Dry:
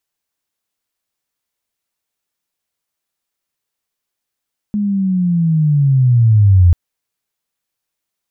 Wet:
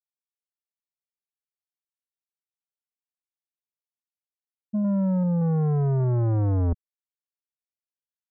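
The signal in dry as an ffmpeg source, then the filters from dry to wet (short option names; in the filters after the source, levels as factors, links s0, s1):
-f lavfi -i "aevalsrc='pow(10,(-14+9.5*t/1.99)/20)*sin(2*PI*(210*t-126*t*t/(2*1.99)))':d=1.99:s=44100"
-af "afftfilt=real='re*gte(hypot(re,im),1.26)':imag='im*gte(hypot(re,im),1.26)':win_size=1024:overlap=0.75,asoftclip=type=tanh:threshold=0.0891"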